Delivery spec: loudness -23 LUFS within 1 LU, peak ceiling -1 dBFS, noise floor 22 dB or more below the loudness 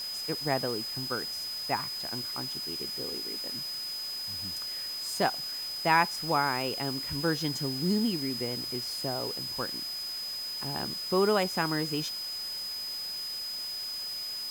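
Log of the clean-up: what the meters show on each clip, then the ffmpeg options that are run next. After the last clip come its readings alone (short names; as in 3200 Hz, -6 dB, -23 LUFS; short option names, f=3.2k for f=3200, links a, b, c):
steady tone 5000 Hz; tone level -34 dBFS; noise floor -37 dBFS; noise floor target -53 dBFS; loudness -30.5 LUFS; peak -10.5 dBFS; loudness target -23.0 LUFS
-> -af "bandreject=f=5k:w=30"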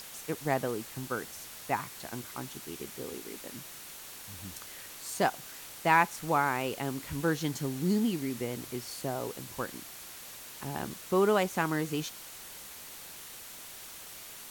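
steady tone none; noise floor -47 dBFS; noise floor target -56 dBFS
-> -af "afftdn=nr=9:nf=-47"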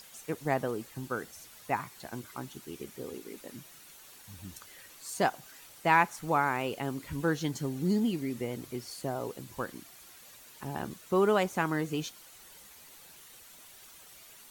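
noise floor -54 dBFS; noise floor target -55 dBFS
-> -af "afftdn=nr=6:nf=-54"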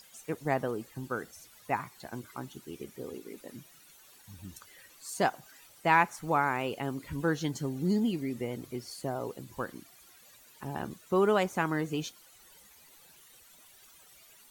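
noise floor -58 dBFS; loudness -32.5 LUFS; peak -11.0 dBFS; loudness target -23.0 LUFS
-> -af "volume=9.5dB"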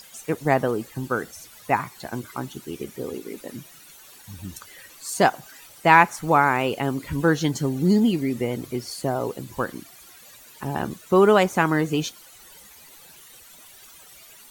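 loudness -23.0 LUFS; peak -1.5 dBFS; noise floor -48 dBFS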